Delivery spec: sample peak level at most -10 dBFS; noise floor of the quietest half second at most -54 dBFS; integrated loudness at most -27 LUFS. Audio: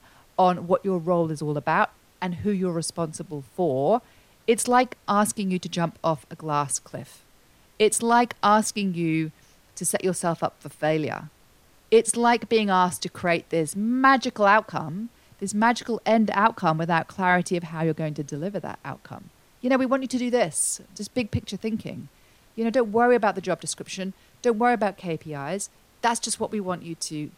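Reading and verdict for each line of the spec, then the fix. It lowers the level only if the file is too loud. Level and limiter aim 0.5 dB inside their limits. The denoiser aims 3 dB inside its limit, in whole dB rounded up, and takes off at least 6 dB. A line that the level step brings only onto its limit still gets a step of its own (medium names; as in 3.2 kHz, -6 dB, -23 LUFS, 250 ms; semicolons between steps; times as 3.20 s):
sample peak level -5.0 dBFS: fail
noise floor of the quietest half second -57 dBFS: pass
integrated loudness -24.5 LUFS: fail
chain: trim -3 dB; peak limiter -10.5 dBFS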